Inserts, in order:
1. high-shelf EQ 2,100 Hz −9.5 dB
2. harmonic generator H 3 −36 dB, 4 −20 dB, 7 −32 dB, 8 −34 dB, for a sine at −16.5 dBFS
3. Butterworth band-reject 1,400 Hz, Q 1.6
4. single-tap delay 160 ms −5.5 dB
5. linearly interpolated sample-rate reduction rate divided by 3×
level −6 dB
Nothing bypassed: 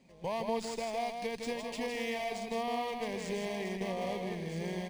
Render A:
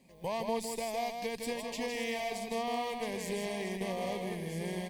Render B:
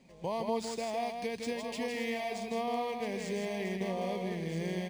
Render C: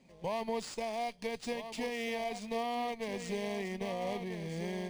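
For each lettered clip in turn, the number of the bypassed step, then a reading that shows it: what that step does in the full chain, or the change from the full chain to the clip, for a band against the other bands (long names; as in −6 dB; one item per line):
5, 8 kHz band +4.0 dB
2, 125 Hz band +2.0 dB
4, change in integrated loudness −1.0 LU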